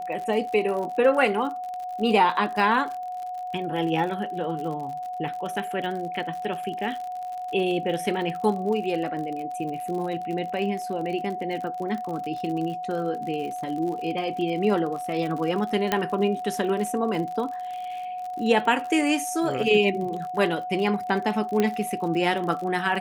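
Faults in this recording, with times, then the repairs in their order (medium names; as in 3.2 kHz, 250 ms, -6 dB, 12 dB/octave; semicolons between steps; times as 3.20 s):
crackle 58 per s -32 dBFS
whine 730 Hz -30 dBFS
15.92 s: pop -8 dBFS
21.60 s: pop -10 dBFS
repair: de-click; band-stop 730 Hz, Q 30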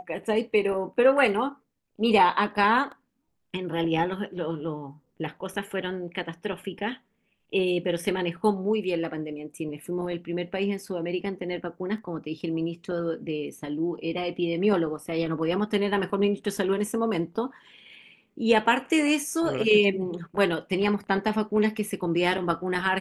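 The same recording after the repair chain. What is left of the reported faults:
nothing left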